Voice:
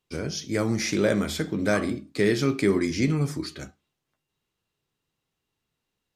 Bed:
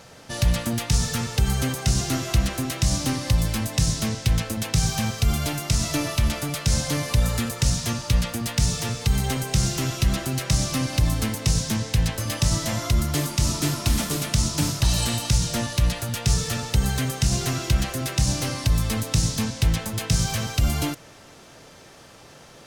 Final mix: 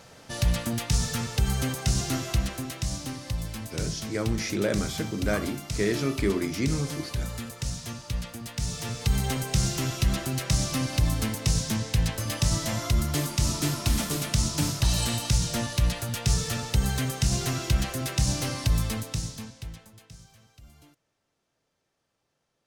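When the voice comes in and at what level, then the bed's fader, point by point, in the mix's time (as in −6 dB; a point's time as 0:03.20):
3.60 s, −4.0 dB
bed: 0:02.17 −3.5 dB
0:03.11 −10.5 dB
0:08.52 −10.5 dB
0:09.08 −3 dB
0:18.81 −3 dB
0:20.34 −30.5 dB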